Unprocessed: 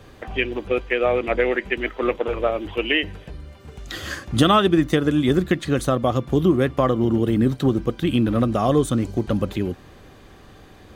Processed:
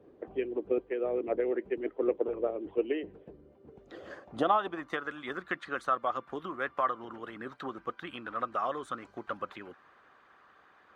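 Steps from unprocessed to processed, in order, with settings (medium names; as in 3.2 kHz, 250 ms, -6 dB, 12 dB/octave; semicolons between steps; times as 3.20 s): band-pass sweep 380 Hz -> 1.3 kHz, 3.70–5.05 s; harmonic-percussive split percussive +8 dB; trim -7.5 dB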